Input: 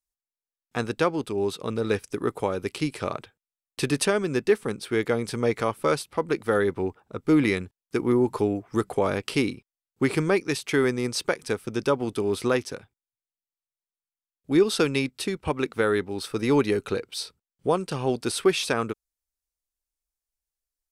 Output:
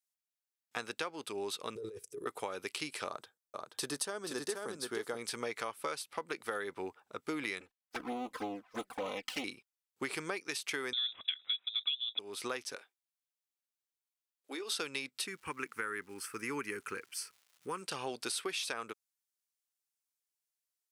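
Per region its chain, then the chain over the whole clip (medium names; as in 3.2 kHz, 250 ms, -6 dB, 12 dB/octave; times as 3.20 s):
1.75–2.26 s: FFT filter 150 Hz 0 dB, 250 Hz -16 dB, 420 Hz +5 dB, 770 Hz -24 dB, 4.5 kHz -19 dB, 7.4 kHz -10 dB + compressor with a negative ratio -31 dBFS
3.06–5.17 s: peaking EQ 2.4 kHz -13 dB 0.8 oct + delay 479 ms -5.5 dB
7.60–9.44 s: comb filter that takes the minimum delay 3.9 ms + peaking EQ 9 kHz -6.5 dB 1.5 oct + touch-sensitive flanger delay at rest 4.6 ms, full sweep at -20.5 dBFS
10.93–12.19 s: peaking EQ 410 Hz +12 dB 0.62 oct + frequency inversion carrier 3.8 kHz
12.75–14.72 s: high-pass 300 Hz 24 dB/octave + compression, threshold -28 dBFS + doubling 22 ms -13 dB
15.26–17.81 s: static phaser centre 1.6 kHz, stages 4 + crackle 380 per s -52 dBFS
whole clip: high-pass 1.4 kHz 6 dB/octave; compression, threshold -34 dBFS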